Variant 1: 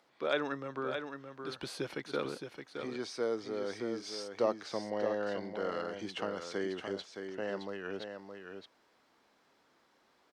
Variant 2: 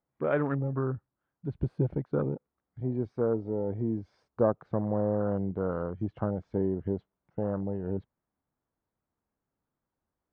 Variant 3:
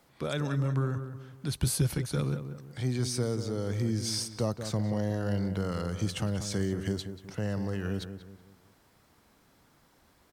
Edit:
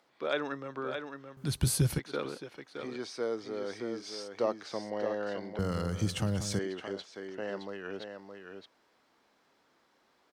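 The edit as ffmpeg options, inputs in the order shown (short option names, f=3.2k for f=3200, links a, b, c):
-filter_complex "[2:a]asplit=2[a][b];[0:a]asplit=3[c][d][e];[c]atrim=end=1.372[f];[a]atrim=start=1.368:end=1.992[g];[d]atrim=start=1.988:end=5.592[h];[b]atrim=start=5.588:end=6.592[i];[e]atrim=start=6.588[j];[f][g]acrossfade=d=0.004:c1=hsin:c2=hsin[k];[k][h]acrossfade=d=0.004:c1=hsin:c2=hsin[l];[l][i]acrossfade=d=0.004:c1=hsin:c2=hsin[m];[m][j]acrossfade=d=0.004:c1=hsin:c2=hsin"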